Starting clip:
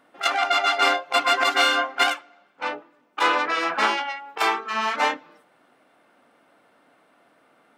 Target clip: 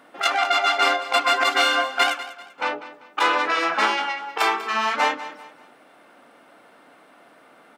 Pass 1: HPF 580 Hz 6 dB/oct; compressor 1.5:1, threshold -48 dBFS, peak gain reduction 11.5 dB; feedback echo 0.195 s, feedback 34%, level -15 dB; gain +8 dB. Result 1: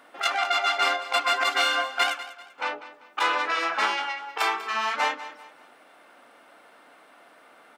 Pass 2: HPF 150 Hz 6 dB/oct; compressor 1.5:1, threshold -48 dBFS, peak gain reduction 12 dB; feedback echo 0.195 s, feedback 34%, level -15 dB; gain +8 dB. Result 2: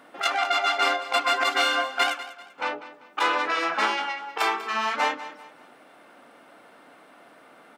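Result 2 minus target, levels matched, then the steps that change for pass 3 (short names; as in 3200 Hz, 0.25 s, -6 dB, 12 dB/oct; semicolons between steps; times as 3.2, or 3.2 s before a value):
compressor: peak gain reduction +3.5 dB
change: compressor 1.5:1, threshold -37.5 dBFS, peak gain reduction 8.5 dB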